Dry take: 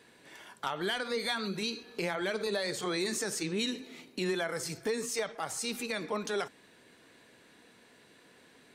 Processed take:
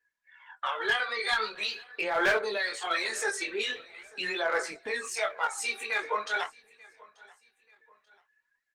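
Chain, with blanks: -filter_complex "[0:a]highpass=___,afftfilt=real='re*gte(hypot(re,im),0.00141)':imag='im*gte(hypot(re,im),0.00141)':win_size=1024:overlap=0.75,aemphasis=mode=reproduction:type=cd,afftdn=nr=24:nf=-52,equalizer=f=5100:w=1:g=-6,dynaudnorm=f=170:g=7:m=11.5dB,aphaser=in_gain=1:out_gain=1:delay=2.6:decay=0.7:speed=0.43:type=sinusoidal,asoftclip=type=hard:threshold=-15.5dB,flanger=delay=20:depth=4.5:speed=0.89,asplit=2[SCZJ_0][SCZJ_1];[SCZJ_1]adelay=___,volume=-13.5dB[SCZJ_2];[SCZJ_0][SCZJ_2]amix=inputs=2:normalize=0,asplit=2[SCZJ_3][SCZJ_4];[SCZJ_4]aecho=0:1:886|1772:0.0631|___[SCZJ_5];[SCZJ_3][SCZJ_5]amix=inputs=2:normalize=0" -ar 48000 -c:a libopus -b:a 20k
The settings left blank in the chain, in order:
920, 18, 0.0246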